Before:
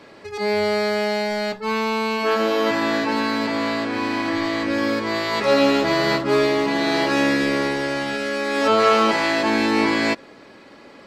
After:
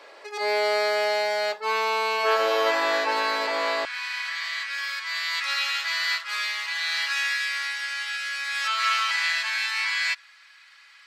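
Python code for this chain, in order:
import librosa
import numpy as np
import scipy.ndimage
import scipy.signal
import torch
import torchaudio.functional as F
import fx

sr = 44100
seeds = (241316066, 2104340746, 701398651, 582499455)

y = fx.highpass(x, sr, hz=fx.steps((0.0, 480.0), (3.85, 1500.0)), slope=24)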